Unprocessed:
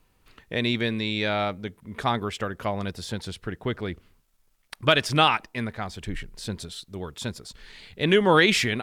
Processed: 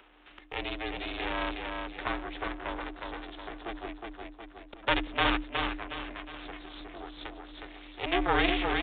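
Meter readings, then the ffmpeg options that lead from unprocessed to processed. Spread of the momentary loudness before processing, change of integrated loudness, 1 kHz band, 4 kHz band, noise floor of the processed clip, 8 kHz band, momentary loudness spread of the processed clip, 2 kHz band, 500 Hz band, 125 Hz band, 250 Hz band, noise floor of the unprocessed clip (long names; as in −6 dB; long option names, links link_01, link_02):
18 LU, −7.5 dB, −5.5 dB, −8.0 dB, −55 dBFS, below −40 dB, 18 LU, −6.0 dB, −10.0 dB, −13.5 dB, −7.5 dB, −66 dBFS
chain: -filter_complex "[0:a]highpass=frequency=330:width=0.5412,highpass=frequency=330:width=1.3066,aecho=1:1:364|728|1092|1456|1820:0.596|0.232|0.0906|0.0353|0.0138,aeval=exprs='max(val(0),0)':channel_layout=same,afreqshift=130,aeval=exprs='val(0)*sin(2*PI*170*n/s)':channel_layout=same,aresample=8000,aresample=44100,asplit=2[link_01][link_02];[link_02]acompressor=mode=upward:threshold=-32dB:ratio=2.5,volume=0dB[link_03];[link_01][link_03]amix=inputs=2:normalize=0,volume=-7dB"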